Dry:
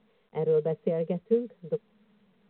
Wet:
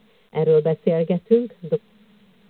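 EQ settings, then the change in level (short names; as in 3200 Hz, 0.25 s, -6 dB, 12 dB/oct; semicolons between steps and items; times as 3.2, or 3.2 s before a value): low shelf 210 Hz +5 dB; high shelf 2700 Hz +12 dB; +7.0 dB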